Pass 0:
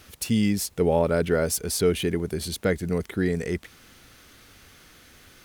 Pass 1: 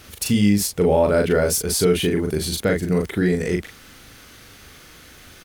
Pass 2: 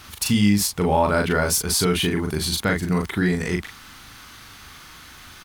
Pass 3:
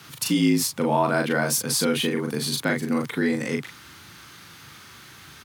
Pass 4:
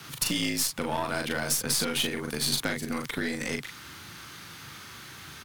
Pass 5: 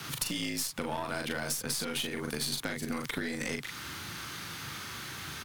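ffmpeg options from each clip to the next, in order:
-filter_complex "[0:a]asplit=2[s0][s1];[s1]adelay=39,volume=0.668[s2];[s0][s2]amix=inputs=2:normalize=0,asplit=2[s3][s4];[s4]alimiter=limit=0.141:level=0:latency=1:release=128,volume=0.794[s5];[s3][s5]amix=inputs=2:normalize=0"
-af "equalizer=f=500:t=o:w=1:g=-9,equalizer=f=1000:t=o:w=1:g=9,equalizer=f=4000:t=o:w=1:g=3"
-af "afreqshift=62,volume=0.75"
-filter_complex "[0:a]acrossover=split=1200|2800[s0][s1][s2];[s0]acompressor=threshold=0.02:ratio=4[s3];[s1]acompressor=threshold=0.0112:ratio=4[s4];[s2]acompressor=threshold=0.0398:ratio=4[s5];[s3][s4][s5]amix=inputs=3:normalize=0,aeval=exprs='0.119*(cos(1*acos(clip(val(0)/0.119,-1,1)))-cos(1*PI/2))+0.0106*(cos(3*acos(clip(val(0)/0.119,-1,1)))-cos(3*PI/2))+0.015*(cos(6*acos(clip(val(0)/0.119,-1,1)))-cos(6*PI/2))+0.00668*(cos(8*acos(clip(val(0)/0.119,-1,1)))-cos(8*PI/2))':c=same,volume=1.58"
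-af "acompressor=threshold=0.0178:ratio=4,volume=1.5"

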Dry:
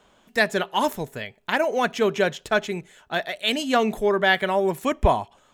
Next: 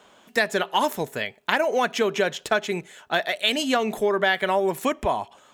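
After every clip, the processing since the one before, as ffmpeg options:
-af "acompressor=threshold=0.0708:ratio=5,highpass=f=260:p=1,volume=1.88"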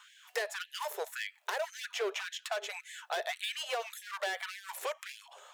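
-filter_complex "[0:a]asoftclip=type=hard:threshold=0.0891,acrossover=split=490|3200[s0][s1][s2];[s0]acompressor=threshold=0.0224:ratio=4[s3];[s1]acompressor=threshold=0.0141:ratio=4[s4];[s2]acompressor=threshold=0.00631:ratio=4[s5];[s3][s4][s5]amix=inputs=3:normalize=0,afftfilt=real='re*gte(b*sr/1024,370*pow(1600/370,0.5+0.5*sin(2*PI*1.8*pts/sr)))':imag='im*gte(b*sr/1024,370*pow(1600/370,0.5+0.5*sin(2*PI*1.8*pts/sr)))':win_size=1024:overlap=0.75"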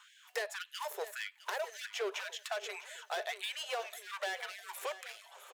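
-af "aecho=1:1:657|1314|1971|2628:0.188|0.0885|0.0416|0.0196,volume=0.75"

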